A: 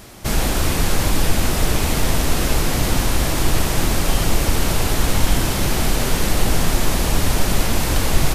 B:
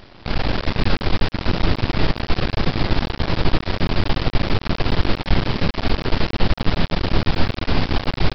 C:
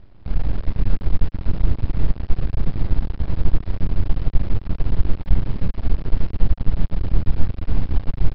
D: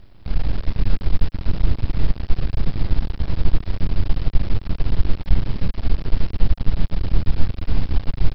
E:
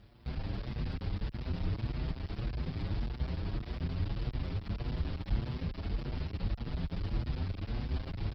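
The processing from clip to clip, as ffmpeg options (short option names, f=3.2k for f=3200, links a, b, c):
-filter_complex "[0:a]asplit=9[a][b][c][d][e][f][g][h][i];[b]adelay=178,afreqshift=81,volume=-10.5dB[j];[c]adelay=356,afreqshift=162,volume=-14.7dB[k];[d]adelay=534,afreqshift=243,volume=-18.8dB[l];[e]adelay=712,afreqshift=324,volume=-23dB[m];[f]adelay=890,afreqshift=405,volume=-27.1dB[n];[g]adelay=1068,afreqshift=486,volume=-31.3dB[o];[h]adelay=1246,afreqshift=567,volume=-35.4dB[p];[i]adelay=1424,afreqshift=648,volume=-39.6dB[q];[a][j][k][l][m][n][o][p][q]amix=inputs=9:normalize=0,aresample=11025,aeval=exprs='max(val(0),0)':c=same,aresample=44100,volume=1dB"
-af "aemphasis=mode=reproduction:type=riaa,volume=-15dB"
-af "crystalizer=i=3.5:c=0"
-filter_complex "[0:a]asplit=2[a][b];[b]asoftclip=type=hard:threshold=-17dB,volume=-4dB[c];[a][c]amix=inputs=2:normalize=0,highpass=49,asplit=2[d][e];[e]adelay=6.8,afreqshift=1.7[f];[d][f]amix=inputs=2:normalize=1,volume=-8dB"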